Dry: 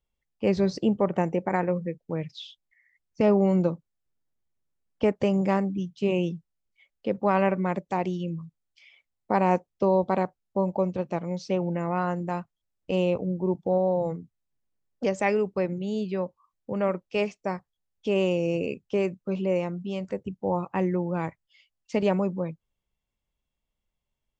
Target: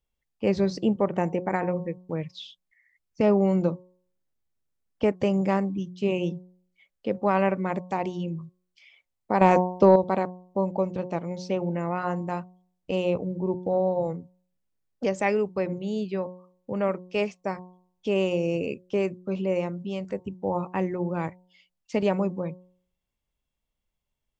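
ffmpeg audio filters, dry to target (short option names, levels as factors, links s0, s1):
-filter_complex "[0:a]bandreject=f=181.6:t=h:w=4,bandreject=f=363.2:t=h:w=4,bandreject=f=544.8:t=h:w=4,bandreject=f=726.4:t=h:w=4,bandreject=f=908:t=h:w=4,bandreject=f=1089.6:t=h:w=4,asettb=1/sr,asplit=3[s0][s1][s2];[s0]atrim=end=9.414[s3];[s1]atrim=start=9.41:end=9.96,asetpts=PTS-STARTPTS,afade=t=in:d=0.004:c=qsin,afade=t=out:st=0.546:d=0.004:c=qsin,acontrast=85[s4];[s2]atrim=start=9.956[s5];[s3][s4]acrossfade=d=0.004:c1=hsin:c2=qsin[s6];[s6][s5]acrossfade=d=0.004:c1=qsin:c2=hsin"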